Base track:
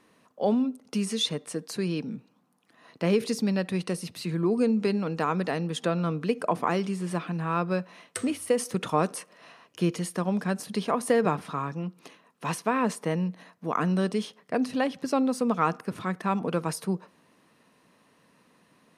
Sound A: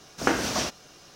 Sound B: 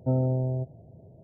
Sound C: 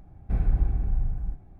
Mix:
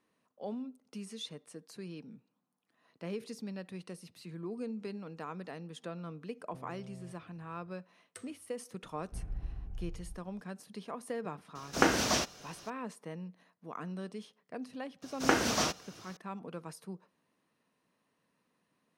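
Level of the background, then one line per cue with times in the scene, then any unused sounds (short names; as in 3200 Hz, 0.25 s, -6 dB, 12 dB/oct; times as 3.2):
base track -15.5 dB
6.48 add B -17 dB + compressor, threshold -31 dBFS
8.83 add C -16.5 dB
11.55 add A -2 dB
15.02 add A -3 dB + HPF 55 Hz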